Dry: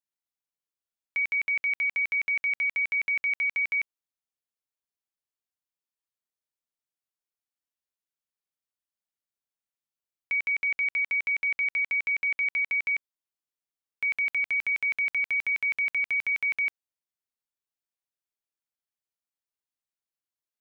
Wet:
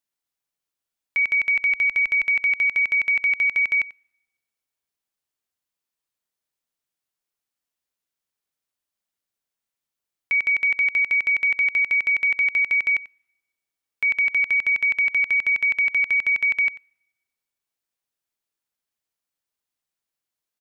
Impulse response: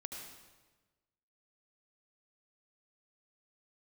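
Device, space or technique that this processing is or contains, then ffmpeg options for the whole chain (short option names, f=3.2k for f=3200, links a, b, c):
keyed gated reverb: -filter_complex "[0:a]asettb=1/sr,asplit=3[a][b][c];[a]atrim=end=1.274[d];[b]atrim=start=1.27:end=2.23,asetpts=PTS-STARTPTS,afade=t=in:d=0.004:c=qsin,afade=t=out:st=0.956:d=0.004:c=qsin,asubboost=boost=9.5:cutoff=54[e];[c]atrim=start=2.226[f];[d][e]acrossfade=d=0.004:c1=hsin:c2=qsin[g];[g][f]acrossfade=d=0.004:c1=qsin:c2=hsin,asplit=3[h][i][j];[1:a]atrim=start_sample=2205[k];[i][k]afir=irnorm=-1:irlink=0[l];[j]apad=whole_len=908727[m];[l][m]sidechaingate=range=-27dB:threshold=-24dB:ratio=16:detection=peak,volume=-4dB[n];[h][n]amix=inputs=2:normalize=0,aecho=1:1:91:0.119,volume=6dB"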